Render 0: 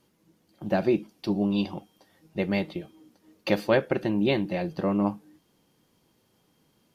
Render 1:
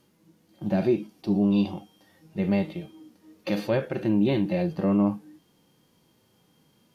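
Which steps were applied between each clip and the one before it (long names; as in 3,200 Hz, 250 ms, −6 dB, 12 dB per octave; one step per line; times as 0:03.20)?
harmonic and percussive parts rebalanced percussive −14 dB
in parallel at +1 dB: brickwall limiter −24 dBFS, peak gain reduction 8.5 dB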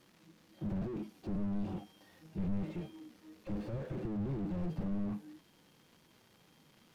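surface crackle 400 per second −35 dBFS
slew-rate limiting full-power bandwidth 5.6 Hz
level −3 dB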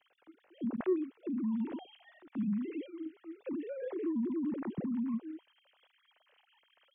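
three sine waves on the formant tracks
level +2 dB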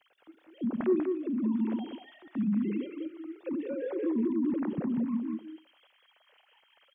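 single-tap delay 192 ms −5.5 dB
on a send at −19 dB: convolution reverb RT60 0.35 s, pre-delay 55 ms
on the sum: level +4 dB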